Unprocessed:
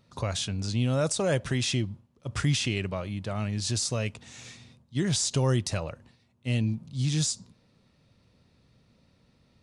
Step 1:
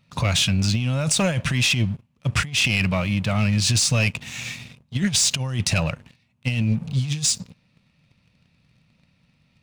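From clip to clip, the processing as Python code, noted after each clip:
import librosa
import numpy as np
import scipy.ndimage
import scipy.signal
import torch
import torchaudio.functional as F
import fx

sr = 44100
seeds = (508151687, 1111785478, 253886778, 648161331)

y = fx.graphic_eq_15(x, sr, hz=(160, 400, 2500), db=(7, -10, 10))
y = fx.over_compress(y, sr, threshold_db=-26.0, ratio=-0.5)
y = fx.leveller(y, sr, passes=2)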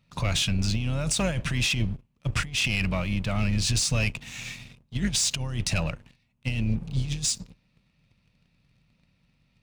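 y = fx.octave_divider(x, sr, octaves=2, level_db=-5.0)
y = y * librosa.db_to_amplitude(-5.5)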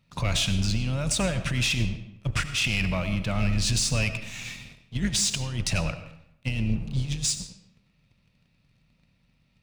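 y = fx.rev_freeverb(x, sr, rt60_s=0.77, hf_ratio=0.8, predelay_ms=50, drr_db=10.5)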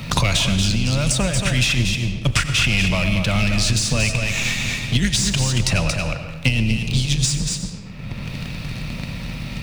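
y = x + 10.0 ** (-8.0 / 20.0) * np.pad(x, (int(228 * sr / 1000.0), 0))[:len(x)]
y = fx.band_squash(y, sr, depth_pct=100)
y = y * librosa.db_to_amplitude(6.5)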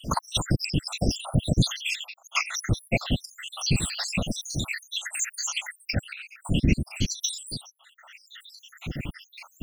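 y = fx.spec_dropout(x, sr, seeds[0], share_pct=84)
y = fx.whisperise(y, sr, seeds[1])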